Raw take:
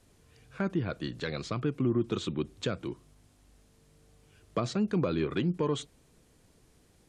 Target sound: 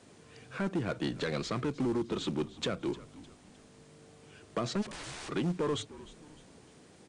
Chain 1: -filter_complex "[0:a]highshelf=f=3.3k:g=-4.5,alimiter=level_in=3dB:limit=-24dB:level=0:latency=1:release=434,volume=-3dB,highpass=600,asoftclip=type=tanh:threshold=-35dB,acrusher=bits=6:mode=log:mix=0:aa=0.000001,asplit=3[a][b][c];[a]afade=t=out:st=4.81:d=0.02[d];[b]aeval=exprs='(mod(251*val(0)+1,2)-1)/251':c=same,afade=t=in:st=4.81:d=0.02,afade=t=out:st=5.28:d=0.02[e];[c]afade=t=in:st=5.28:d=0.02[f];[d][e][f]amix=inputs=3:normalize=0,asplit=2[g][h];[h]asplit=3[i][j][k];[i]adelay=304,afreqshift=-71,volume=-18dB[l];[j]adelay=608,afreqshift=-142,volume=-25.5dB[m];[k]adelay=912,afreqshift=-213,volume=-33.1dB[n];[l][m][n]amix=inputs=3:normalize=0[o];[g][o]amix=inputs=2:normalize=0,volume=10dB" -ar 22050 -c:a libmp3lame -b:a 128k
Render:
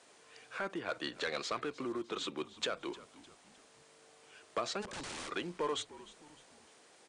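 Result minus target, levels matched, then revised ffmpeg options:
125 Hz band -12.5 dB
-filter_complex "[0:a]highshelf=f=3.3k:g=-4.5,alimiter=level_in=3dB:limit=-24dB:level=0:latency=1:release=434,volume=-3dB,highpass=160,asoftclip=type=tanh:threshold=-35dB,acrusher=bits=6:mode=log:mix=0:aa=0.000001,asplit=3[a][b][c];[a]afade=t=out:st=4.81:d=0.02[d];[b]aeval=exprs='(mod(251*val(0)+1,2)-1)/251':c=same,afade=t=in:st=4.81:d=0.02,afade=t=out:st=5.28:d=0.02[e];[c]afade=t=in:st=5.28:d=0.02[f];[d][e][f]amix=inputs=3:normalize=0,asplit=2[g][h];[h]asplit=3[i][j][k];[i]adelay=304,afreqshift=-71,volume=-18dB[l];[j]adelay=608,afreqshift=-142,volume=-25.5dB[m];[k]adelay=912,afreqshift=-213,volume=-33.1dB[n];[l][m][n]amix=inputs=3:normalize=0[o];[g][o]amix=inputs=2:normalize=0,volume=10dB" -ar 22050 -c:a libmp3lame -b:a 128k

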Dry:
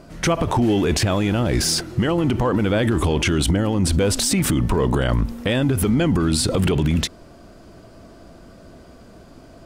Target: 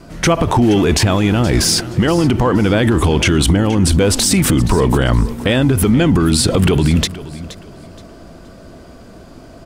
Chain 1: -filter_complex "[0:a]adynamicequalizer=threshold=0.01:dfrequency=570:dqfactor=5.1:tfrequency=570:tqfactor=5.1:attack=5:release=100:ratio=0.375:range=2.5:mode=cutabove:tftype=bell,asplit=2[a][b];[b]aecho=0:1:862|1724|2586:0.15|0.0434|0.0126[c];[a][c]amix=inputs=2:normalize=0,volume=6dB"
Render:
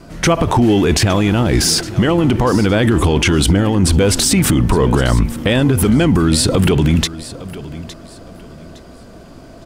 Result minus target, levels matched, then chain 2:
echo 0.389 s late
-filter_complex "[0:a]adynamicequalizer=threshold=0.01:dfrequency=570:dqfactor=5.1:tfrequency=570:tqfactor=5.1:attack=5:release=100:ratio=0.375:range=2.5:mode=cutabove:tftype=bell,asplit=2[a][b];[b]aecho=0:1:473|946|1419:0.15|0.0434|0.0126[c];[a][c]amix=inputs=2:normalize=0,volume=6dB"

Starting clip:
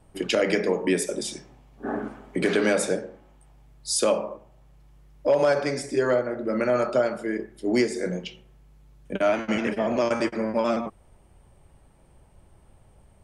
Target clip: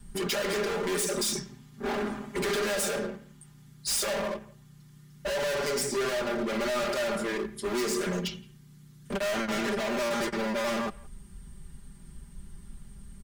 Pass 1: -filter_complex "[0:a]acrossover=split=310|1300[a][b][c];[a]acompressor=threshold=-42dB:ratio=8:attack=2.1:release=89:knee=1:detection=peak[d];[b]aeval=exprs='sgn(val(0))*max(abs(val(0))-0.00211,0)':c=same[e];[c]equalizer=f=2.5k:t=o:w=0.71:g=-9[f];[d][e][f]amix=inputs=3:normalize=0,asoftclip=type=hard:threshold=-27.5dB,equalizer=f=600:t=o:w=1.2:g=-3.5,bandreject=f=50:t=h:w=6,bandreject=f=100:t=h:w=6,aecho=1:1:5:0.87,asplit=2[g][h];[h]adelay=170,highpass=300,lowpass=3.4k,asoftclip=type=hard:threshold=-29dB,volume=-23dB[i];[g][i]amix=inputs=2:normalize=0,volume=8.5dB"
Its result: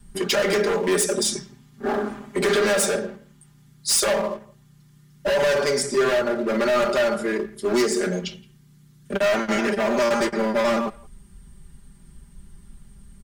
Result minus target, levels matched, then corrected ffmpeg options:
hard clip: distortion -4 dB
-filter_complex "[0:a]acrossover=split=310|1300[a][b][c];[a]acompressor=threshold=-42dB:ratio=8:attack=2.1:release=89:knee=1:detection=peak[d];[b]aeval=exprs='sgn(val(0))*max(abs(val(0))-0.00211,0)':c=same[e];[c]equalizer=f=2.5k:t=o:w=0.71:g=-9[f];[d][e][f]amix=inputs=3:normalize=0,asoftclip=type=hard:threshold=-38dB,equalizer=f=600:t=o:w=1.2:g=-3.5,bandreject=f=50:t=h:w=6,bandreject=f=100:t=h:w=6,aecho=1:1:5:0.87,asplit=2[g][h];[h]adelay=170,highpass=300,lowpass=3.4k,asoftclip=type=hard:threshold=-29dB,volume=-23dB[i];[g][i]amix=inputs=2:normalize=0,volume=8.5dB"

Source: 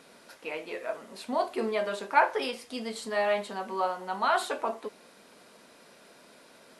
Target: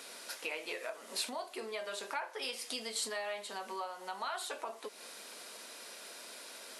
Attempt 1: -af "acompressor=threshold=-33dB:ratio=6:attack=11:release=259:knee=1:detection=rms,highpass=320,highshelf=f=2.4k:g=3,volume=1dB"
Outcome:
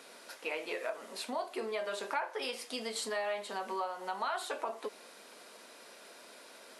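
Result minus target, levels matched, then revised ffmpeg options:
compressor: peak gain reduction -5.5 dB; 4000 Hz band -5.0 dB
-af "acompressor=threshold=-39.5dB:ratio=6:attack=11:release=259:knee=1:detection=rms,highpass=320,highshelf=f=2.4k:g=11.5,volume=1dB"

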